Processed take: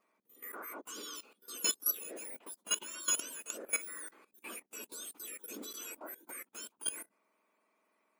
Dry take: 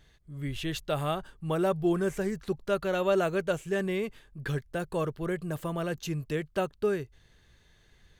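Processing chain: spectrum mirrored in octaves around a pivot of 2000 Hz; level quantiser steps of 16 dB; gain +3 dB

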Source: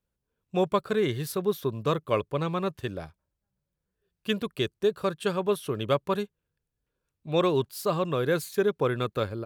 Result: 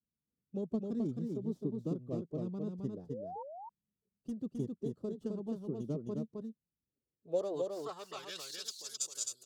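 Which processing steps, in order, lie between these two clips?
tracing distortion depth 0.2 ms; high shelf 12000 Hz +10.5 dB; harmonic-percussive split harmonic -8 dB; EQ curve 110 Hz 0 dB, 240 Hz -8 dB, 390 Hz -4 dB, 2100 Hz -18 dB, 5000 Hz +4 dB, 7300 Hz +7 dB, 11000 Hz +2 dB; compressor 2.5:1, threshold -30 dBFS, peak gain reduction 6 dB; formant-preserving pitch shift +1.5 st; band-pass sweep 230 Hz -> 6900 Hz, 6.89–8.84; painted sound rise, 3.09–3.43, 430–970 Hz -50 dBFS; on a send: echo 0.263 s -3.5 dB; on the sum: gain +6.5 dB

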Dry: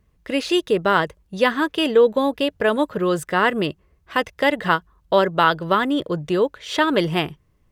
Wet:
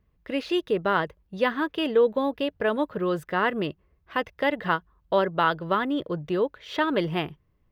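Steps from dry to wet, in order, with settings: bell 8200 Hz -14 dB 1.2 oct; gain -5.5 dB

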